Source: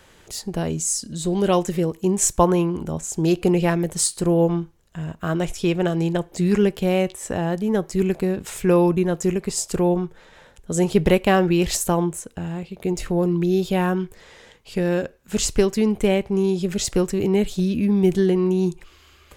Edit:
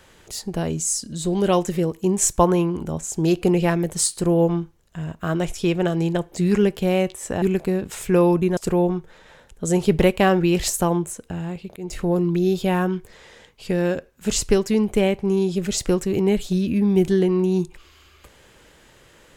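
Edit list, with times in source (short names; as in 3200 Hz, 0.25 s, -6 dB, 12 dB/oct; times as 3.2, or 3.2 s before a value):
7.42–7.97 cut
9.12–9.64 cut
12.83–13.08 fade in, from -19 dB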